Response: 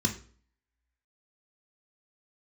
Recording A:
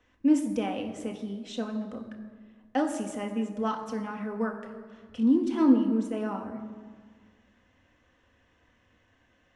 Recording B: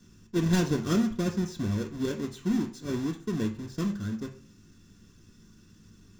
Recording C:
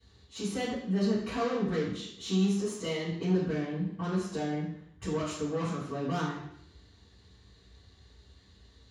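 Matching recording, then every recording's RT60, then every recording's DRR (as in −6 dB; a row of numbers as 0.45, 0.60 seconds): B; 1.6, 0.45, 0.70 seconds; 2.5, 3.0, −13.0 decibels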